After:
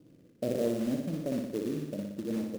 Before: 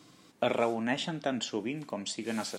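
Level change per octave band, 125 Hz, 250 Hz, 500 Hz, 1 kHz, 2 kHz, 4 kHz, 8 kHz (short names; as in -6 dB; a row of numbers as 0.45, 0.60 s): +3.5, +2.5, -1.0, -14.5, -14.0, -13.5, -8.5 dB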